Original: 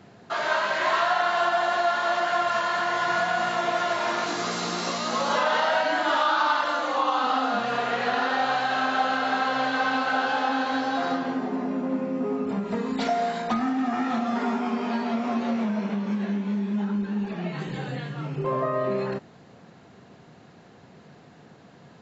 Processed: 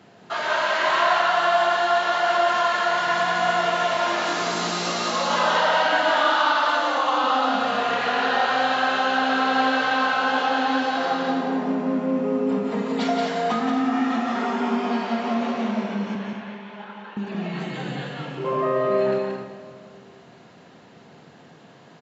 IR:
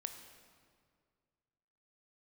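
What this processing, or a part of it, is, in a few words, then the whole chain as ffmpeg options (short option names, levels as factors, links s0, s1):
stadium PA: -filter_complex "[0:a]asettb=1/sr,asplit=3[s0][s1][s2];[s0]atrim=end=16.154[s3];[s1]atrim=start=16.15:end=17.17,asetpts=PTS-STARTPTS,afade=t=in:d=0.004:c=qsin,afade=t=out:st=1.016:d=0.004:c=qsin,acrossover=split=520 3800:gain=0.0708 1 0.158[s4][s5][s6];[s4][s5][s6]amix=inputs=3:normalize=0[s7];[s2]atrim=start=17.166[s8];[s3][s7]acrossfade=d=0.004:c1=hsin:c2=qsin[s9];[s9][s8]acrossfade=d=0.004:c1=qsin:c2=hsin,highpass=f=190:p=1,equalizer=f=3000:t=o:w=0.35:g=3,aecho=1:1:177.8|227.4|259.5:0.631|0.282|0.282[s10];[1:a]atrim=start_sample=2205[s11];[s10][s11]afir=irnorm=-1:irlink=0,volume=1.58"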